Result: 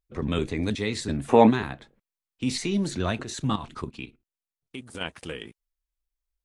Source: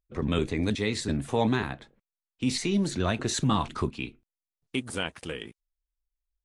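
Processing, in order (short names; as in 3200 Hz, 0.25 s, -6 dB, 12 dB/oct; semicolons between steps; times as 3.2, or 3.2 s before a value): 1.29–1.5 spectral gain 200–2900 Hz +10 dB; 3.23–5.01 level quantiser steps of 12 dB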